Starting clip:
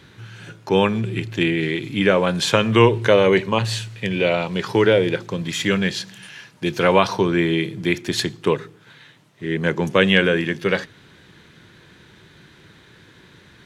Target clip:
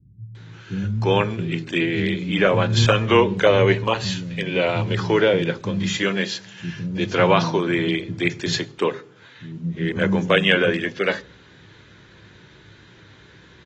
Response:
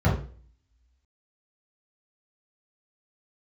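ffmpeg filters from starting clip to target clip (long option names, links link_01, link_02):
-filter_complex "[0:a]acrossover=split=210[link_01][link_02];[link_02]adelay=350[link_03];[link_01][link_03]amix=inputs=2:normalize=0,asplit=2[link_04][link_05];[1:a]atrim=start_sample=2205[link_06];[link_05][link_06]afir=irnorm=-1:irlink=0,volume=-33.5dB[link_07];[link_04][link_07]amix=inputs=2:normalize=0,volume=-1.5dB" -ar 32000 -c:a aac -b:a 24k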